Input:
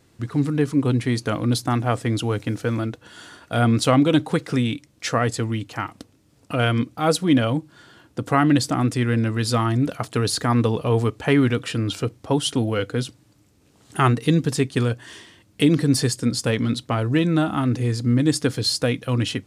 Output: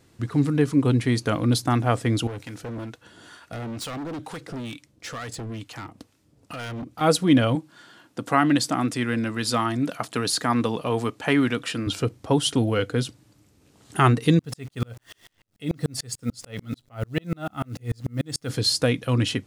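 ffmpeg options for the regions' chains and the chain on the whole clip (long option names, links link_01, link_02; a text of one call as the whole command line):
ffmpeg -i in.wav -filter_complex "[0:a]asettb=1/sr,asplit=3[link_01][link_02][link_03];[link_01]atrim=end=2.274[link_04];[link_02]atrim=start=2.27:end=7.01,asetpts=PTS-STARTPTS,afade=type=in:duration=0.004:curve=qsin,afade=type=out:start_time=4.736:duration=0.004:curve=qsin,acompressor=threshold=-24dB:ratio=2:attack=3.2:release=140:knee=1:detection=peak,acrossover=split=760[link_05][link_06];[link_05]aeval=exprs='val(0)*(1-0.7/2+0.7/2*cos(2*PI*2.2*n/s))':channel_layout=same[link_07];[link_06]aeval=exprs='val(0)*(1-0.7/2-0.7/2*cos(2*PI*2.2*n/s))':channel_layout=same[link_08];[link_07][link_08]amix=inputs=2:normalize=0,volume=30.5dB,asoftclip=hard,volume=-30.5dB[link_09];[link_03]atrim=start=7.006[link_10];[link_04][link_09]acrossfade=duration=0.004:curve1=hsin:curve2=qsin[link_11];[link_11][link_10]acrossfade=duration=0.004:curve1=qsin:curve2=hsin,asettb=1/sr,asplit=3[link_12][link_13][link_14];[link_12]atrim=end=7.554[link_15];[link_13]atrim=start=7.55:end=11.87,asetpts=PTS-STARTPTS,afade=type=in:duration=0.004:curve=qsin,afade=type=out:start_time=4.316:duration=0.004:curve=qsin,highpass=200,equalizer=frequency=420:width=2:gain=-5[link_16];[link_14]atrim=start=11.866[link_17];[link_15][link_16]acrossfade=duration=0.004:curve1=hsin:curve2=qsin[link_18];[link_18][link_17]acrossfade=duration=0.004:curve1=qsin:curve2=hsin,asettb=1/sr,asplit=3[link_19][link_20][link_21];[link_19]atrim=end=14.394[link_22];[link_20]atrim=start=14.39:end=18.5,asetpts=PTS-STARTPTS,afade=type=in:duration=0.004:curve=qsin,afade=type=out:start_time=4.106:duration=0.004:curve=qsin,aecho=1:1:1.5:0.4,atrim=end_sample=181251,acrusher=bits=8:dc=4:mix=0:aa=0.000001,aeval=exprs='val(0)*pow(10,-38*if(lt(mod(-6.8*n/s,1),2*abs(-6.8)/1000),1-mod(-6.8*n/s,1)/(2*abs(-6.8)/1000),(mod(-6.8*n/s,1)-2*abs(-6.8)/1000)/(1-2*abs(-6.8)/1000))/20)':channel_layout=same[link_23];[link_21]atrim=start=18.496[link_24];[link_22][link_23]acrossfade=duration=0.004:curve1=hsin:curve2=qsin[link_25];[link_25][link_24]acrossfade=duration=0.004:curve1=qsin:curve2=hsin" out.wav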